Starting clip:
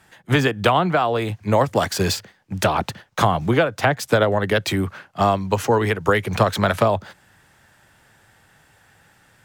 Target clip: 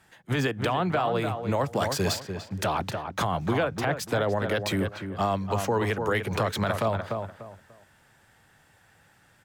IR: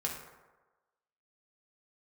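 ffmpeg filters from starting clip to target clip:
-filter_complex "[0:a]asplit=2[link_01][link_02];[link_02]adelay=294,lowpass=frequency=2100:poles=1,volume=-8dB,asplit=2[link_03][link_04];[link_04]adelay=294,lowpass=frequency=2100:poles=1,volume=0.27,asplit=2[link_05][link_06];[link_06]adelay=294,lowpass=frequency=2100:poles=1,volume=0.27[link_07];[link_01][link_03][link_05][link_07]amix=inputs=4:normalize=0,alimiter=limit=-10.5dB:level=0:latency=1:release=28,volume=-5.5dB"

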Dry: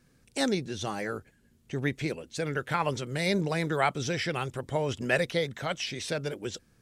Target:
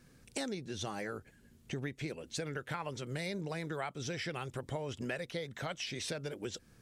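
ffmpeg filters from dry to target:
ffmpeg -i in.wav -af "acompressor=threshold=-39dB:ratio=6,volume=2.5dB" out.wav

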